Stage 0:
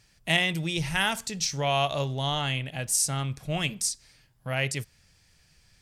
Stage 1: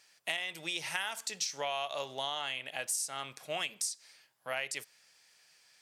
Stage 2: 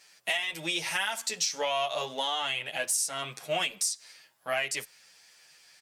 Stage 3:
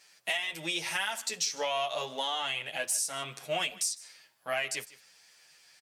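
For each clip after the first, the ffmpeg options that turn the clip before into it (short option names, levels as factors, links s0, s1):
-af "highpass=570,acompressor=threshold=0.0282:ratio=12"
-filter_complex "[0:a]asplit=2[s0][s1];[s1]asoftclip=type=tanh:threshold=0.0355,volume=0.422[s2];[s0][s2]amix=inputs=2:normalize=0,asplit=2[s3][s4];[s4]adelay=9.2,afreqshift=1.4[s5];[s3][s5]amix=inputs=2:normalize=1,volume=2.11"
-af "aecho=1:1:154:0.1,volume=0.794"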